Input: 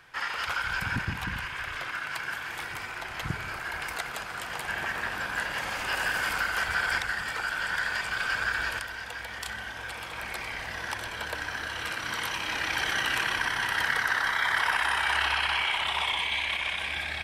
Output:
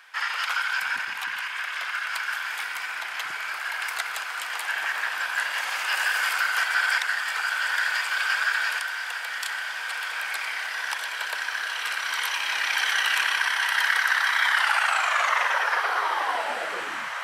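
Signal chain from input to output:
turntable brake at the end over 2.79 s
high-pass filter 990 Hz 12 dB per octave
feedback delay with all-pass diffusion 1,803 ms, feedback 55%, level −9.5 dB
level +5 dB

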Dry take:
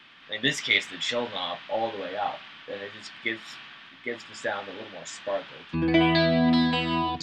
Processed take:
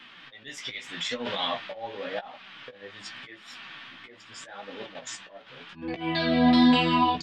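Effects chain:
0:04.86–0:05.47: output level in coarse steps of 10 dB
volume swells 497 ms
0:00.84–0:01.39: compressor whose output falls as the input rises −35 dBFS, ratio −1
flanger 0.85 Hz, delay 3.6 ms, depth 7.4 ms, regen +37%
double-tracking delay 16 ms −6 dB
level +6 dB

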